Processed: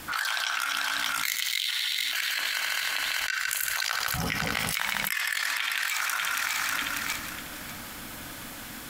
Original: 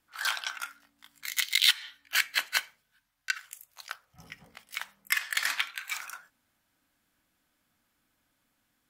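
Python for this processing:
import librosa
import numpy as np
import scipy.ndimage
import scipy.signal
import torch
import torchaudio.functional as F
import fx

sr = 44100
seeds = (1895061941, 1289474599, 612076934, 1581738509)

y = fx.reverse_delay_fb(x, sr, ms=297, feedback_pct=43, wet_db=-13)
y = fx.rider(y, sr, range_db=3, speed_s=0.5)
y = fx.echo_heads(y, sr, ms=76, heads='first and second', feedback_pct=47, wet_db=-16.5)
y = fx.env_flatten(y, sr, amount_pct=100)
y = y * librosa.db_to_amplitude(-8.5)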